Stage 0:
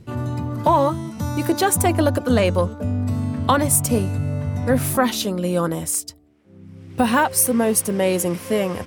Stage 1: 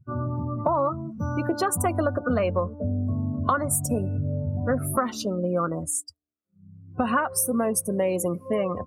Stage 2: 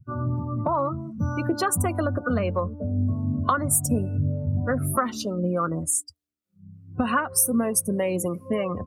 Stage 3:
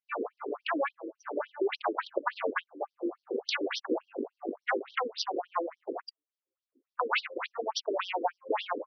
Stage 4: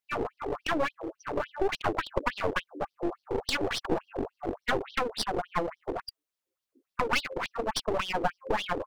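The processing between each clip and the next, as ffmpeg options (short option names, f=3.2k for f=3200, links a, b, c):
-af "afftdn=nr=34:nf=-28,superequalizer=8b=1.58:10b=2.82:13b=0.398,acompressor=threshold=-17dB:ratio=4,volume=-3.5dB"
-filter_complex "[0:a]equalizer=f=680:t=o:w=1.7:g=-5,acrossover=split=440[a][b];[a]aeval=exprs='val(0)*(1-0.5/2+0.5/2*cos(2*PI*3.3*n/s))':c=same[c];[b]aeval=exprs='val(0)*(1-0.5/2-0.5/2*cos(2*PI*3.3*n/s))':c=same[d];[c][d]amix=inputs=2:normalize=0,volume=4.5dB"
-af "aeval=exprs='0.473*(cos(1*acos(clip(val(0)/0.473,-1,1)))-cos(1*PI/2))+0.211*(cos(8*acos(clip(val(0)/0.473,-1,1)))-cos(8*PI/2))':c=same,acompressor=threshold=-16dB:ratio=6,afftfilt=real='re*between(b*sr/1024,360*pow(4400/360,0.5+0.5*sin(2*PI*3.5*pts/sr))/1.41,360*pow(4400/360,0.5+0.5*sin(2*PI*3.5*pts/sr))*1.41)':imag='im*between(b*sr/1024,360*pow(4400/360,0.5+0.5*sin(2*PI*3.5*pts/sr))/1.41,360*pow(4400/360,0.5+0.5*sin(2*PI*3.5*pts/sr))*1.41)':win_size=1024:overlap=0.75"
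-af "aeval=exprs='clip(val(0),-1,0.0119)':c=same,volume=5dB"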